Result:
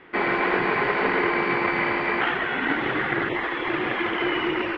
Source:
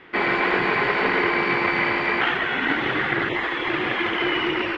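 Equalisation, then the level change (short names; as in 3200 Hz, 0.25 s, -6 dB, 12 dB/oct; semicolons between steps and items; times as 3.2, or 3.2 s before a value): bell 94 Hz -2.5 dB 1.7 oct; high shelf 3400 Hz -11 dB; 0.0 dB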